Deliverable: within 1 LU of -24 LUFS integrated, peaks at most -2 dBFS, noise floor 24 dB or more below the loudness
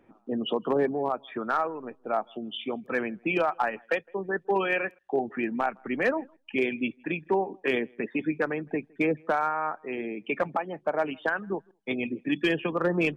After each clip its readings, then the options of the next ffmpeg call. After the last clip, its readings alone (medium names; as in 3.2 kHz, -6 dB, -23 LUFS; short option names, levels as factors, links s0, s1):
loudness -29.5 LUFS; peak level -15.5 dBFS; loudness target -24.0 LUFS
-> -af "volume=1.88"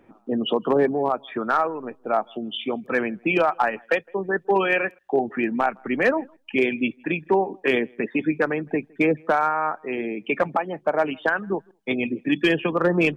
loudness -24.0 LUFS; peak level -10.0 dBFS; noise floor -58 dBFS